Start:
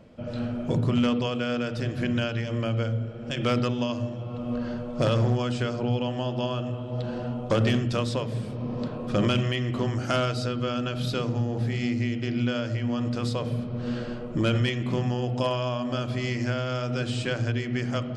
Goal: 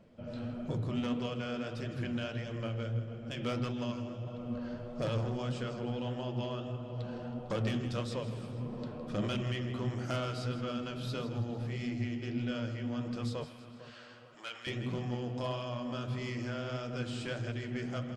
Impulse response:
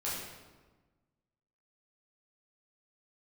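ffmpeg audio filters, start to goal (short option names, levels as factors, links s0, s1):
-filter_complex "[0:a]asplit=2[s0][s1];[s1]aecho=0:1:161|322|483|644|805:0.224|0.105|0.0495|0.0232|0.0109[s2];[s0][s2]amix=inputs=2:normalize=0,asoftclip=type=tanh:threshold=0.119,asettb=1/sr,asplit=3[s3][s4][s5];[s3]atrim=end=13.444[s6];[s4]atrim=start=13.44:end=14.67,asetpts=PTS-STARTPTS,afade=t=in:d=0.004:c=qsin,afade=t=out:st=1.226:d=0.004:c=qsin,highpass=1100[s7];[s5]atrim=start=14.666[s8];[s6][s7]acrossfade=d=0.004:c1=hsin:c2=qsin[s9];[s9][s8]acrossfade=d=0.004:c1=qsin:c2=hsin,asplit=2[s10][s11];[s11]adelay=452,lowpass=f=1900:p=1,volume=0.2,asplit=2[s12][s13];[s13]adelay=452,lowpass=f=1900:p=1,volume=0.35,asplit=2[s14][s15];[s15]adelay=452,lowpass=f=1900:p=1,volume=0.35[s16];[s12][s14][s16]amix=inputs=3:normalize=0[s17];[s10][s17]amix=inputs=2:normalize=0,flanger=delay=4.1:depth=9.6:regen=59:speed=1.6:shape=triangular,volume=0.596"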